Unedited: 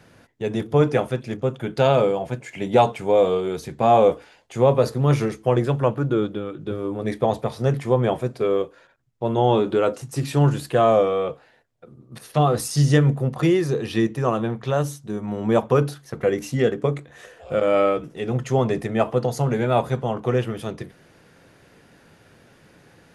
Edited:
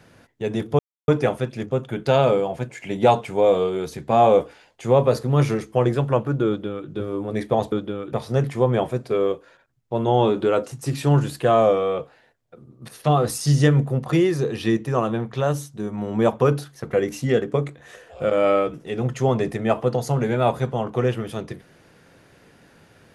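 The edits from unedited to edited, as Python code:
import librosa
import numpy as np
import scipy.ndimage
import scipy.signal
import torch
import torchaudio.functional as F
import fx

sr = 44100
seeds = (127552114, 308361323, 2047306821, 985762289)

y = fx.edit(x, sr, fx.insert_silence(at_s=0.79, length_s=0.29),
    fx.duplicate(start_s=6.19, length_s=0.41, to_s=7.43), tone=tone)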